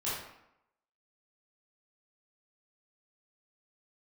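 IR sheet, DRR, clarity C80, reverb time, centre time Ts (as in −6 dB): −10.0 dB, 4.0 dB, 0.80 s, 65 ms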